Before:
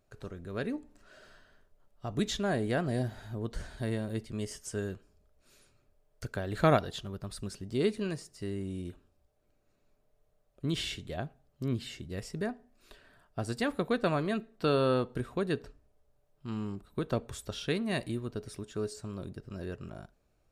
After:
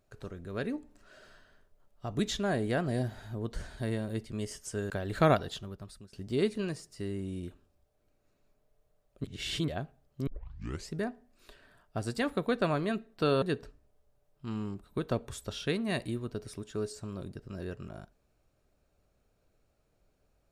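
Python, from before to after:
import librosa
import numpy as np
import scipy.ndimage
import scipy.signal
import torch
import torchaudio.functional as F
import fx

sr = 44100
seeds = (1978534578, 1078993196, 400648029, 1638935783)

y = fx.edit(x, sr, fx.cut(start_s=4.9, length_s=1.42),
    fx.fade_out_to(start_s=6.95, length_s=0.6, floor_db=-22.0),
    fx.reverse_span(start_s=10.66, length_s=0.44),
    fx.tape_start(start_s=11.69, length_s=0.63),
    fx.cut(start_s=14.84, length_s=0.59), tone=tone)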